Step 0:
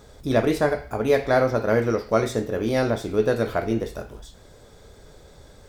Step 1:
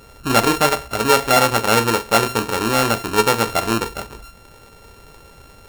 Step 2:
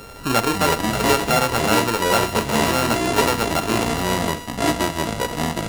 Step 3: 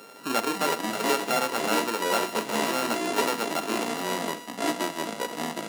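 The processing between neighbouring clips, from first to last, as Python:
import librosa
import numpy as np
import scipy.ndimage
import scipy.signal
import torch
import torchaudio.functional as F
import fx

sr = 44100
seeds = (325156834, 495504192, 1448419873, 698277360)

y1 = np.r_[np.sort(x[:len(x) // 32 * 32].reshape(-1, 32), axis=1).ravel(), x[len(x) // 32 * 32:]]
y1 = fx.low_shelf(y1, sr, hz=200.0, db=-3.5)
y1 = y1 * 10.0 ** (5.0 / 20.0)
y2 = fx.echo_pitch(y1, sr, ms=174, semitones=-6, count=2, db_per_echo=-3.0)
y2 = fx.band_squash(y2, sr, depth_pct=40)
y2 = y2 * 10.0 ** (-4.0 / 20.0)
y3 = scipy.signal.sosfilt(scipy.signal.butter(4, 210.0, 'highpass', fs=sr, output='sos'), y2)
y3 = y3 * 10.0 ** (-7.0 / 20.0)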